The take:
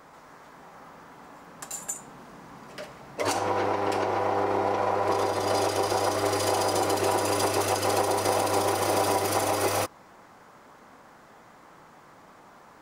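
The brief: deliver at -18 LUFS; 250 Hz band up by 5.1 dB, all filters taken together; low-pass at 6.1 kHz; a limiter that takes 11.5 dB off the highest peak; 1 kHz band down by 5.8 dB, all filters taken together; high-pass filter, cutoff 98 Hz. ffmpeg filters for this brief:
-af "highpass=98,lowpass=6100,equalizer=f=250:t=o:g=8.5,equalizer=f=1000:t=o:g=-8.5,volume=5.62,alimiter=limit=0.376:level=0:latency=1"

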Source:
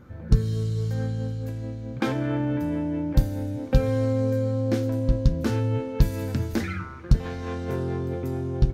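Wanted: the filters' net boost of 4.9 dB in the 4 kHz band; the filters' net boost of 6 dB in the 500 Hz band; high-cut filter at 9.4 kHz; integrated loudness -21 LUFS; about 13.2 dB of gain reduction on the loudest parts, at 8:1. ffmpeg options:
-af "lowpass=9400,equalizer=f=500:t=o:g=6.5,equalizer=f=4000:t=o:g=6,acompressor=threshold=0.0501:ratio=8,volume=3.16"

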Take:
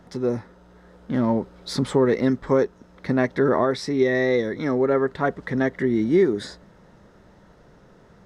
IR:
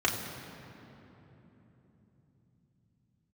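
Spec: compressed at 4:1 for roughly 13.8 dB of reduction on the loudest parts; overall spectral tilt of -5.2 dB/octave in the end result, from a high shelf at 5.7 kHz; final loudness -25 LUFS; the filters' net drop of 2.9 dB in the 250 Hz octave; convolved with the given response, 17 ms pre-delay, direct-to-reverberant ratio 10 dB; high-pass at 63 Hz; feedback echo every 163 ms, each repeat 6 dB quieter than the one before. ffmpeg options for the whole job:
-filter_complex "[0:a]highpass=63,equalizer=f=250:t=o:g=-3.5,highshelf=f=5700:g=-4.5,acompressor=threshold=0.0224:ratio=4,aecho=1:1:163|326|489|652|815|978:0.501|0.251|0.125|0.0626|0.0313|0.0157,asplit=2[s0][s1];[1:a]atrim=start_sample=2205,adelay=17[s2];[s1][s2]afir=irnorm=-1:irlink=0,volume=0.0841[s3];[s0][s3]amix=inputs=2:normalize=0,volume=2.82"

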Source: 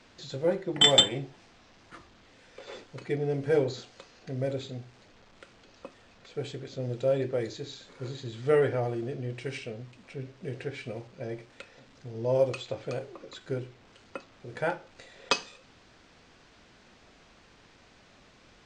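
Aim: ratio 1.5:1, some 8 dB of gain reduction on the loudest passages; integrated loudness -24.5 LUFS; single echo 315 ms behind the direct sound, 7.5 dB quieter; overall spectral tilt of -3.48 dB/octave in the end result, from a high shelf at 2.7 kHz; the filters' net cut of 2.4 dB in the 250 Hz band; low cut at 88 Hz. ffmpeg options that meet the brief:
-af "highpass=88,equalizer=f=250:t=o:g=-3.5,highshelf=f=2700:g=6,acompressor=threshold=0.02:ratio=1.5,aecho=1:1:315:0.422,volume=2.99"

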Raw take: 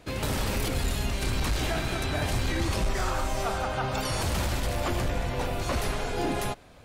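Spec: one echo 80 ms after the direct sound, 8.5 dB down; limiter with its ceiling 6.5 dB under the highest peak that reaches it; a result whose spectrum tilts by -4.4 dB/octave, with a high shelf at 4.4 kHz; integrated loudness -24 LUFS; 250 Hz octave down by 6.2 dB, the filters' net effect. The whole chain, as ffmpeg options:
-af "equalizer=f=250:t=o:g=-9,highshelf=f=4400:g=-5,alimiter=limit=0.0631:level=0:latency=1,aecho=1:1:80:0.376,volume=2.99"

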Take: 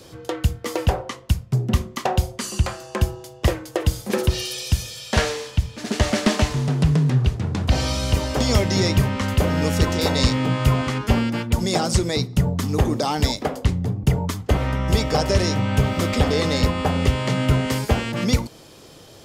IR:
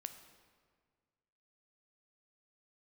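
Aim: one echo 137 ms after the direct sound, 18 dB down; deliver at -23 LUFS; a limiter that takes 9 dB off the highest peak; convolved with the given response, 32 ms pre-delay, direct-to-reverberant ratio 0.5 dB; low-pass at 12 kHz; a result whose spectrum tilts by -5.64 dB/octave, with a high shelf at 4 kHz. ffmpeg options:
-filter_complex "[0:a]lowpass=12000,highshelf=f=4000:g=-4.5,alimiter=limit=0.158:level=0:latency=1,aecho=1:1:137:0.126,asplit=2[s0][s1];[1:a]atrim=start_sample=2205,adelay=32[s2];[s1][s2]afir=irnorm=-1:irlink=0,volume=1.5[s3];[s0][s3]amix=inputs=2:normalize=0"

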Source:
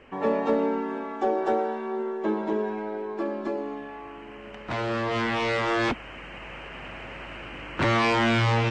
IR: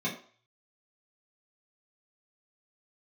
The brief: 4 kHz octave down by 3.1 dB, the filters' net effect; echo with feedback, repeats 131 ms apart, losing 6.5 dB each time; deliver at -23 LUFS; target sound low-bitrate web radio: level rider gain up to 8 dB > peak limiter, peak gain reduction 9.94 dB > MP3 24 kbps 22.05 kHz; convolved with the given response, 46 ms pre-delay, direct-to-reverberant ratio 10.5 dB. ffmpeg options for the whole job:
-filter_complex "[0:a]equalizer=f=4000:t=o:g=-4.5,aecho=1:1:131|262|393|524|655|786:0.473|0.222|0.105|0.0491|0.0231|0.0109,asplit=2[s0][s1];[1:a]atrim=start_sample=2205,adelay=46[s2];[s1][s2]afir=irnorm=-1:irlink=0,volume=0.133[s3];[s0][s3]amix=inputs=2:normalize=0,dynaudnorm=m=2.51,alimiter=limit=0.0841:level=0:latency=1,volume=2.51" -ar 22050 -c:a libmp3lame -b:a 24k

